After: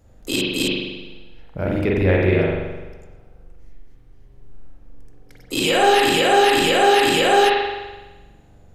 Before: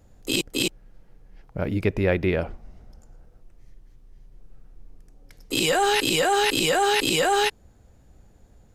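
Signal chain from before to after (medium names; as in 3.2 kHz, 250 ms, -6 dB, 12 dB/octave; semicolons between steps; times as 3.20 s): spring tank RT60 1.2 s, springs 42 ms, chirp 25 ms, DRR -4 dB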